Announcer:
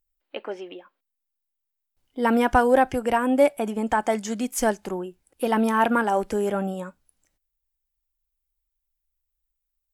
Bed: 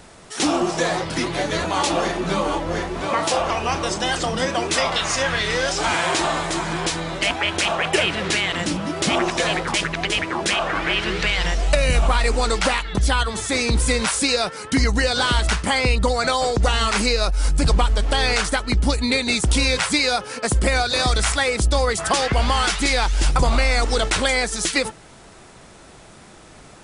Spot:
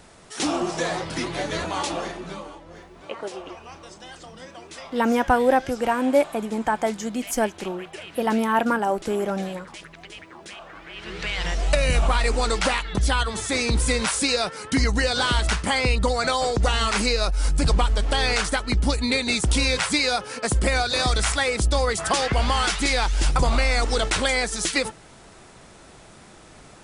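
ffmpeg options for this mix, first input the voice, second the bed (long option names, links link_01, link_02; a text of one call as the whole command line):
ffmpeg -i stem1.wav -i stem2.wav -filter_complex "[0:a]adelay=2750,volume=-0.5dB[link_01];[1:a]volume=12.5dB,afade=type=out:start_time=1.62:duration=0.93:silence=0.177828,afade=type=in:start_time=10.92:duration=0.75:silence=0.141254[link_02];[link_01][link_02]amix=inputs=2:normalize=0" out.wav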